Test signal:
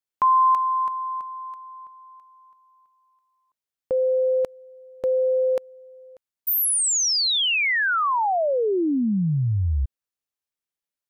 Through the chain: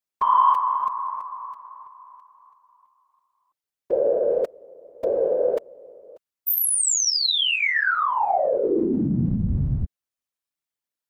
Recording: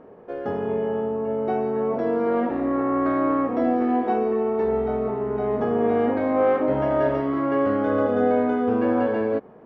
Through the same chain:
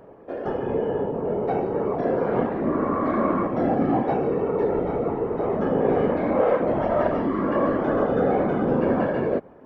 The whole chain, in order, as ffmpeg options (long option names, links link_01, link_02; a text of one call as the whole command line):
ffmpeg -i in.wav -af "acontrast=47,afftfilt=real='hypot(re,im)*cos(2*PI*random(0))':imag='hypot(re,im)*sin(2*PI*random(1))':win_size=512:overlap=0.75" out.wav